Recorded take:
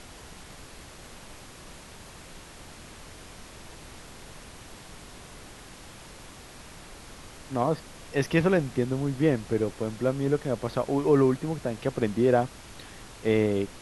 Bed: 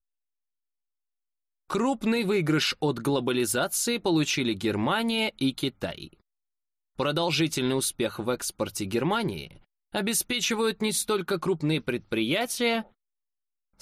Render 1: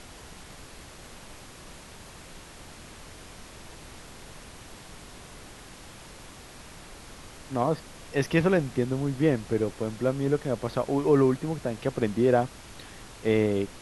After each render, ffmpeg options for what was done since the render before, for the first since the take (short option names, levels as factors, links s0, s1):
-af anull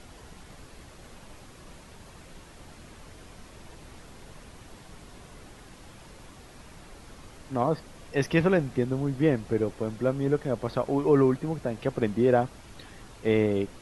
-af "afftdn=nr=6:nf=-47"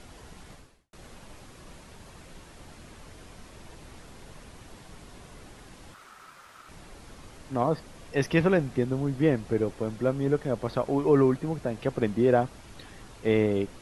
-filter_complex "[0:a]asettb=1/sr,asplit=3[s0][s1][s2];[s0]atrim=end=5.944[s3];[s1]atrim=start=5.94:end=6.69,asetpts=PTS-STARTPTS,afade=t=in:d=0.004:c=qsin,afade=t=out:st=0.746:d=0.004:c=qsin,aeval=exprs='val(0)*sin(2*PI*1300*n/s)':c=same[s4];[s2]atrim=start=6.686[s5];[s3][s4]acrossfade=d=0.004:c1=hsin:c2=qsin[s6];[s6][s5]acrossfade=d=0.004:c1=qsin:c2=hsin,asplit=2[s7][s8];[s7]atrim=end=0.93,asetpts=PTS-STARTPTS,afade=t=out:st=0.52:d=0.41:c=qua[s9];[s8]atrim=start=0.93,asetpts=PTS-STARTPTS,afade=t=in:d=0.004:c=hsin[s10];[s9][s10]concat=n=2:v=0:a=1"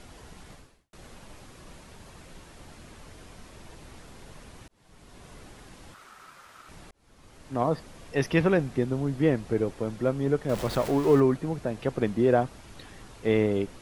-filter_complex "[0:a]asettb=1/sr,asplit=3[s0][s1][s2];[s0]atrim=end=10.494[s3];[s1]atrim=start=10.49:end=11.2,asetpts=PTS-STARTPTS,afade=t=in:d=0.004:c=qsin,afade=t=out:st=0.706:d=0.004:c=qsin,aeval=exprs='val(0)+0.5*0.0266*sgn(val(0))':c=same[s4];[s2]atrim=start=11.196[s5];[s3][s4]acrossfade=d=0.004:c1=hsin:c2=qsin[s6];[s6][s5]acrossfade=d=0.004:c1=qsin:c2=hsin,asplit=3[s7][s8][s9];[s7]atrim=end=4.68,asetpts=PTS-STARTPTS,afade=t=out:st=4.676:d=0.004:c=hsin[s10];[s8]atrim=start=4.68:end=6.91,asetpts=PTS-STARTPTS,afade=t=in:d=0.62,afade=t=out:st=2.226:d=0.004:c=hsin[s11];[s9]atrim=start=6.91,asetpts=PTS-STARTPTS,afade=t=in:d=0.72[s12];[s10][s11][s12]concat=n=3:v=0:a=1"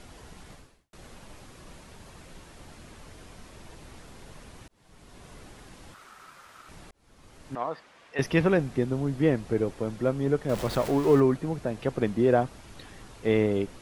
-filter_complex "[0:a]asettb=1/sr,asplit=3[s0][s1][s2];[s0]atrim=end=7.554[s3];[s1]atrim=start=7.55:end=8.19,asetpts=PTS-STARTPTS,afade=t=in:d=0.004:c=qsin,afade=t=out:st=0.636:d=0.004:c=qsin,bandpass=f=1700:t=q:w=0.73[s4];[s2]atrim=start=8.186[s5];[s3][s4]acrossfade=d=0.004:c1=hsin:c2=qsin[s6];[s6][s5]acrossfade=d=0.004:c1=qsin:c2=hsin"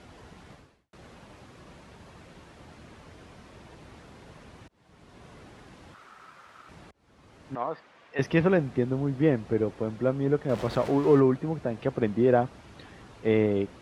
-af "highpass=65,aemphasis=mode=reproduction:type=50fm"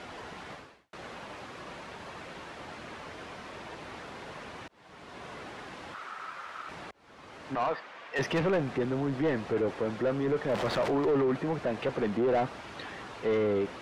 -filter_complex "[0:a]asoftclip=type=tanh:threshold=0.0841,asplit=2[s0][s1];[s1]highpass=f=720:p=1,volume=7.08,asoftclip=type=tanh:threshold=0.0841[s2];[s0][s2]amix=inputs=2:normalize=0,lowpass=f=3200:p=1,volume=0.501"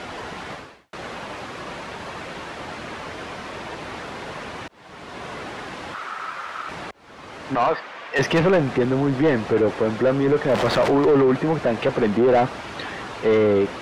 -af "volume=3.16"